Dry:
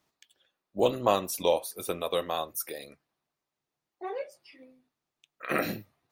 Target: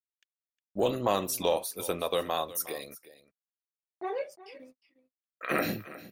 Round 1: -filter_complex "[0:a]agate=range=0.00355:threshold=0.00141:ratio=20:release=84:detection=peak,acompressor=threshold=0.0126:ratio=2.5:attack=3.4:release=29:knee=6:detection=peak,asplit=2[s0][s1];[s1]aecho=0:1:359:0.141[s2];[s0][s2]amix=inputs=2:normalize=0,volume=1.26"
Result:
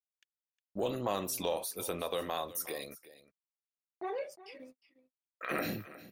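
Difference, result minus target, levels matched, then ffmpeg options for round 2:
compression: peak gain reduction +7 dB
-filter_complex "[0:a]agate=range=0.00355:threshold=0.00141:ratio=20:release=84:detection=peak,acompressor=threshold=0.0473:ratio=2.5:attack=3.4:release=29:knee=6:detection=peak,asplit=2[s0][s1];[s1]aecho=0:1:359:0.141[s2];[s0][s2]amix=inputs=2:normalize=0,volume=1.26"

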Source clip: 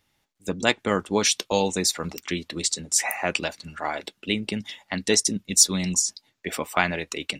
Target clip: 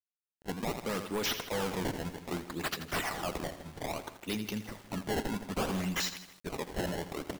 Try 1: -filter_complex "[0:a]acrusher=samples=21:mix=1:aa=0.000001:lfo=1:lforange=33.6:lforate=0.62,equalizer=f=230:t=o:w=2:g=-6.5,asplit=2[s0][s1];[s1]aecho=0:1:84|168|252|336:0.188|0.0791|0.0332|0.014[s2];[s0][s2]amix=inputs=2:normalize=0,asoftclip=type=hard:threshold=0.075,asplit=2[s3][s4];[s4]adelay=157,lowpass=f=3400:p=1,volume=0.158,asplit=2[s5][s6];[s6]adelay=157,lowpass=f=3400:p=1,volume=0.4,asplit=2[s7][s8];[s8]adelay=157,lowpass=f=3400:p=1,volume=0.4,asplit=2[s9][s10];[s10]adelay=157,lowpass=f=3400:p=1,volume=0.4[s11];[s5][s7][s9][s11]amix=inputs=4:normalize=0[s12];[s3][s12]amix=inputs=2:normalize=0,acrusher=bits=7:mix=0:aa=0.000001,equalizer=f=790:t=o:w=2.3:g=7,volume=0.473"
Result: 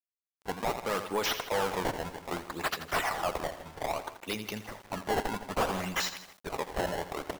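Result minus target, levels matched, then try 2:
250 Hz band -5.5 dB; 1 kHz band +4.0 dB
-filter_complex "[0:a]acrusher=samples=21:mix=1:aa=0.000001:lfo=1:lforange=33.6:lforate=0.62,asplit=2[s0][s1];[s1]aecho=0:1:84|168|252|336:0.188|0.0791|0.0332|0.014[s2];[s0][s2]amix=inputs=2:normalize=0,asoftclip=type=hard:threshold=0.075,asplit=2[s3][s4];[s4]adelay=157,lowpass=f=3400:p=1,volume=0.158,asplit=2[s5][s6];[s6]adelay=157,lowpass=f=3400:p=1,volume=0.4,asplit=2[s7][s8];[s8]adelay=157,lowpass=f=3400:p=1,volume=0.4,asplit=2[s9][s10];[s10]adelay=157,lowpass=f=3400:p=1,volume=0.4[s11];[s5][s7][s9][s11]amix=inputs=4:normalize=0[s12];[s3][s12]amix=inputs=2:normalize=0,acrusher=bits=7:mix=0:aa=0.000001,volume=0.473"

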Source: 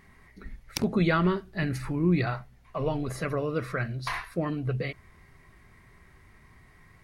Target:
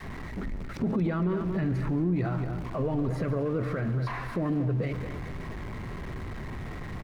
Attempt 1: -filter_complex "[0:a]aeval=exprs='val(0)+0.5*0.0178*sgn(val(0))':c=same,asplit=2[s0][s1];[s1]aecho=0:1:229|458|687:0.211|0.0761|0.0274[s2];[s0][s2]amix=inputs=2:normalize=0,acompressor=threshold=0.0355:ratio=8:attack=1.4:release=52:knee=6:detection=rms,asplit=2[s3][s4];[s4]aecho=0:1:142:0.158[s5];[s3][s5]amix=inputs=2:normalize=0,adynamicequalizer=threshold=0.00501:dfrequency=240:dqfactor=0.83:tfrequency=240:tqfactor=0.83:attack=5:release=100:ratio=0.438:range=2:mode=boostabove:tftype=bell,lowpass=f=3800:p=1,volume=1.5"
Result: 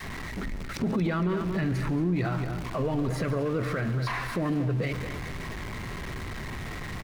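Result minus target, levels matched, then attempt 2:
4 kHz band +8.0 dB
-filter_complex "[0:a]aeval=exprs='val(0)+0.5*0.0178*sgn(val(0))':c=same,asplit=2[s0][s1];[s1]aecho=0:1:229|458|687:0.211|0.0761|0.0274[s2];[s0][s2]amix=inputs=2:normalize=0,acompressor=threshold=0.0355:ratio=8:attack=1.4:release=52:knee=6:detection=rms,asplit=2[s3][s4];[s4]aecho=0:1:142:0.158[s5];[s3][s5]amix=inputs=2:normalize=0,adynamicequalizer=threshold=0.00501:dfrequency=240:dqfactor=0.83:tfrequency=240:tqfactor=0.83:attack=5:release=100:ratio=0.438:range=2:mode=boostabove:tftype=bell,lowpass=f=960:p=1,volume=1.5"

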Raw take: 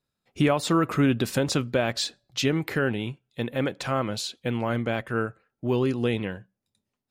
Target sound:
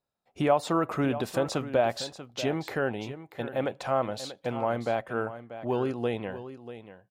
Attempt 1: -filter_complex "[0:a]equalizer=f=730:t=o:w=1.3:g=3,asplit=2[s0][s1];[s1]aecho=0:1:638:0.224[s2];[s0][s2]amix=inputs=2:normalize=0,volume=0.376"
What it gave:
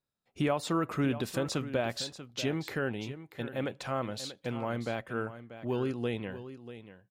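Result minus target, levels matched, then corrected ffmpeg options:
1 kHz band -3.0 dB
-filter_complex "[0:a]equalizer=f=730:t=o:w=1.3:g=13,asplit=2[s0][s1];[s1]aecho=0:1:638:0.224[s2];[s0][s2]amix=inputs=2:normalize=0,volume=0.376"

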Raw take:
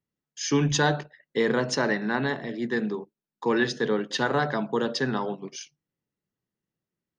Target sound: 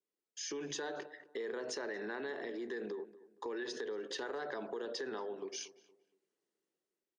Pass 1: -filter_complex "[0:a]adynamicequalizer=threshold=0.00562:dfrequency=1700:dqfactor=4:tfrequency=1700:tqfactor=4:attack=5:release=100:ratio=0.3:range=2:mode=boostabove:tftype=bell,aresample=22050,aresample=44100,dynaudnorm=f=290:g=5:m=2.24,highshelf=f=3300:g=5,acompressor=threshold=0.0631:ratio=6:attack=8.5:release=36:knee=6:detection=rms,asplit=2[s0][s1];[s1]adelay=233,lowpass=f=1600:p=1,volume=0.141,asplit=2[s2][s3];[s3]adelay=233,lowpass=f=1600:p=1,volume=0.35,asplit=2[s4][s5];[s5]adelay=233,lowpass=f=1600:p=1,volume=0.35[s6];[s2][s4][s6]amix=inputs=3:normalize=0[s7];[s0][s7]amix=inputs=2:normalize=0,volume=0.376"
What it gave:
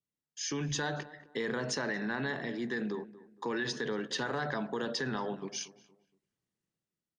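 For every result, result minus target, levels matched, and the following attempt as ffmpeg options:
compression: peak gain reduction -9 dB; 500 Hz band -3.5 dB
-filter_complex "[0:a]adynamicequalizer=threshold=0.00562:dfrequency=1700:dqfactor=4:tfrequency=1700:tqfactor=4:attack=5:release=100:ratio=0.3:range=2:mode=boostabove:tftype=bell,aresample=22050,aresample=44100,dynaudnorm=f=290:g=5:m=2.24,highshelf=f=3300:g=5,acompressor=threshold=0.0237:ratio=6:attack=8.5:release=36:knee=6:detection=rms,asplit=2[s0][s1];[s1]adelay=233,lowpass=f=1600:p=1,volume=0.141,asplit=2[s2][s3];[s3]adelay=233,lowpass=f=1600:p=1,volume=0.35,asplit=2[s4][s5];[s5]adelay=233,lowpass=f=1600:p=1,volume=0.35[s6];[s2][s4][s6]amix=inputs=3:normalize=0[s7];[s0][s7]amix=inputs=2:normalize=0,volume=0.376"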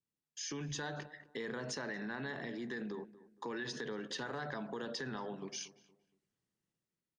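500 Hz band -3.5 dB
-filter_complex "[0:a]adynamicequalizer=threshold=0.00562:dfrequency=1700:dqfactor=4:tfrequency=1700:tqfactor=4:attack=5:release=100:ratio=0.3:range=2:mode=boostabove:tftype=bell,highpass=f=390:t=q:w=2.9,aresample=22050,aresample=44100,dynaudnorm=f=290:g=5:m=2.24,highshelf=f=3300:g=5,acompressor=threshold=0.0237:ratio=6:attack=8.5:release=36:knee=6:detection=rms,asplit=2[s0][s1];[s1]adelay=233,lowpass=f=1600:p=1,volume=0.141,asplit=2[s2][s3];[s3]adelay=233,lowpass=f=1600:p=1,volume=0.35,asplit=2[s4][s5];[s5]adelay=233,lowpass=f=1600:p=1,volume=0.35[s6];[s2][s4][s6]amix=inputs=3:normalize=0[s7];[s0][s7]amix=inputs=2:normalize=0,volume=0.376"

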